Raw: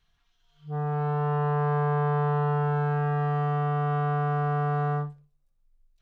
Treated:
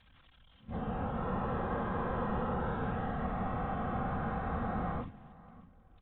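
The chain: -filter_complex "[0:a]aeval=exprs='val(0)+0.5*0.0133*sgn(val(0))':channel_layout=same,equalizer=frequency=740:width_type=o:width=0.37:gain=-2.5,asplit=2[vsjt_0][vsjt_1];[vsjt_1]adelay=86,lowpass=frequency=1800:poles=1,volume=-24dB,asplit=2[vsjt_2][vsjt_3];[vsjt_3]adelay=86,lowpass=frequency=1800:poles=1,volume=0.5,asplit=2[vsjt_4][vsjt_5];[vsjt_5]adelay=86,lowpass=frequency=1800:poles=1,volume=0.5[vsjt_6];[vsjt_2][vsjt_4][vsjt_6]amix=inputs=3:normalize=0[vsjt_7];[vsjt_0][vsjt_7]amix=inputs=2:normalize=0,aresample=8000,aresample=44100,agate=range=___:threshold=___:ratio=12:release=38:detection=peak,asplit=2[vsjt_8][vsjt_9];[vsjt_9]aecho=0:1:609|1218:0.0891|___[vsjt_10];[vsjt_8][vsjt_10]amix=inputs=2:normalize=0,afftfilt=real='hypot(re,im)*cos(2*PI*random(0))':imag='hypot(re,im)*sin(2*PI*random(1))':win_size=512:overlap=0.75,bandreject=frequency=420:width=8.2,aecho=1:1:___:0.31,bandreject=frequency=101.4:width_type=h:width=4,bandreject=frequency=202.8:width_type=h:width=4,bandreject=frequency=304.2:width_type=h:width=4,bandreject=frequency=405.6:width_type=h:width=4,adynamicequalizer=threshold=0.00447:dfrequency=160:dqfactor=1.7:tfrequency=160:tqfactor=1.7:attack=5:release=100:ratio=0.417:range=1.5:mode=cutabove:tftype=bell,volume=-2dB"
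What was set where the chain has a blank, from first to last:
-9dB, -37dB, 0.0232, 3.8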